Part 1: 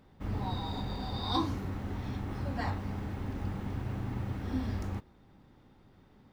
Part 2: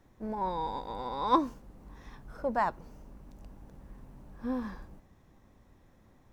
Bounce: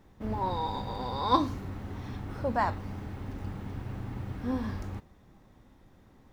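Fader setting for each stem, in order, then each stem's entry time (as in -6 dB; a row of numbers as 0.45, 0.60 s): -2.0, +0.5 dB; 0.00, 0.00 s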